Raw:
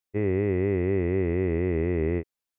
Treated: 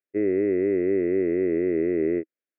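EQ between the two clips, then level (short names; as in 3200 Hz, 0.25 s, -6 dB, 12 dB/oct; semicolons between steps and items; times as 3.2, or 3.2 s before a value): Butterworth band-stop 920 Hz, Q 0.89; air absorption 70 m; speaker cabinet 290–2100 Hz, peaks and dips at 320 Hz +6 dB, 630 Hz +6 dB, 900 Hz +4 dB; +3.0 dB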